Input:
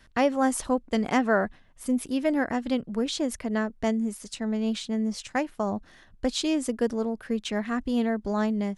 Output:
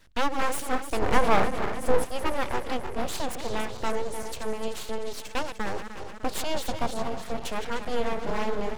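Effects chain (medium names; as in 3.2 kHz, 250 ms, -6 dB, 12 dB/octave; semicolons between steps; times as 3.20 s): backward echo that repeats 151 ms, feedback 75%, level -9 dB; 1.02–2.05 s: bass shelf 390 Hz +11 dB; full-wave rectifier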